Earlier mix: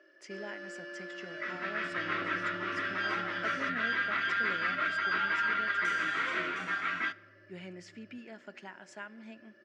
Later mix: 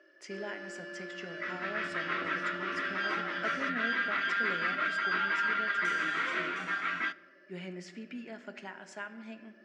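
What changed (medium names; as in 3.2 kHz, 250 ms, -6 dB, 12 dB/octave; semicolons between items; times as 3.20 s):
speech: send +11.0 dB; second sound: muted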